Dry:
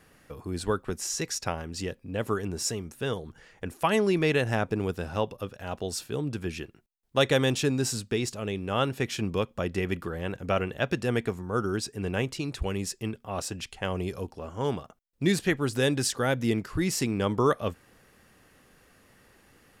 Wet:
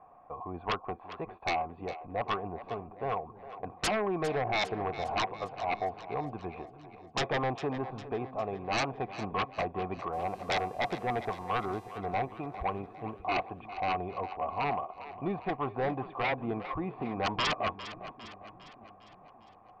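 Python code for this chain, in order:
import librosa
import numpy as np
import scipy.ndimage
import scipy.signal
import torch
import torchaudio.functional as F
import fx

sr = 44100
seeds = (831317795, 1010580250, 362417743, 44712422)

y = fx.formant_cascade(x, sr, vowel='a')
y = fx.fold_sine(y, sr, drive_db=19, ceiling_db=-21.0)
y = fx.dmg_buzz(y, sr, base_hz=400.0, harmonics=34, level_db=-57.0, tilt_db=-4, odd_only=False, at=(10.12, 11.97), fade=0.02)
y = fx.echo_split(y, sr, split_hz=350.0, low_ms=582, high_ms=404, feedback_pct=52, wet_db=-13.5)
y = y * librosa.db_to_amplitude(-4.5)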